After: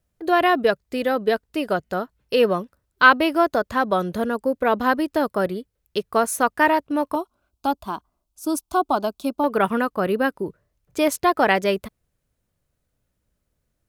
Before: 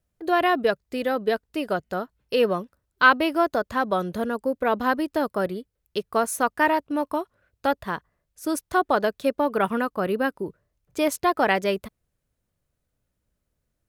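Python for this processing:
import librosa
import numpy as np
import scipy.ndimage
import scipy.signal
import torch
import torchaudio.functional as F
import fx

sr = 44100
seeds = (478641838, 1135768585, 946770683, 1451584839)

y = fx.fixed_phaser(x, sr, hz=490.0, stages=6, at=(7.15, 9.44))
y = y * librosa.db_to_amplitude(3.0)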